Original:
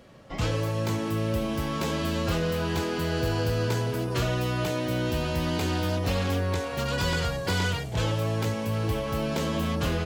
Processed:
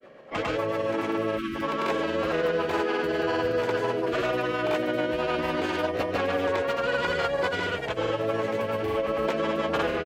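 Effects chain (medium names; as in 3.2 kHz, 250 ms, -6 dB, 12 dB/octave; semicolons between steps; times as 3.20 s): rotary cabinet horn 7 Hz; three-band isolator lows -22 dB, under 320 Hz, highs -16 dB, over 2.7 kHz; in parallel at 0 dB: peak limiter -29.5 dBFS, peak gain reduction 8.5 dB; on the sum: spectral selection erased 1.36–1.62 s, 420–1100 Hz; granulator 100 ms, pitch spread up and down by 0 st; trim +5 dB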